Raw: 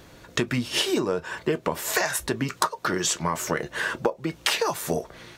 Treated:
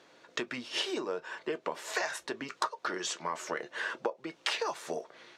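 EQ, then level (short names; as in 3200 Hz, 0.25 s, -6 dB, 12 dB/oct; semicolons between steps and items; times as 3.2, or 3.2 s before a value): BPF 360–5900 Hz; -7.5 dB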